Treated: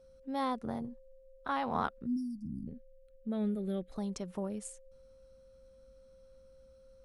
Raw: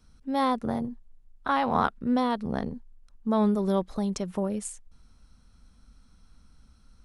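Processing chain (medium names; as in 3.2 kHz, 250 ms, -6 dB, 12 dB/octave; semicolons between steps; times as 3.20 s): whistle 530 Hz -49 dBFS; 2.48–3.92 s: static phaser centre 2.4 kHz, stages 4; 2.06–2.68 s: spectral selection erased 330–4600 Hz; trim -8.5 dB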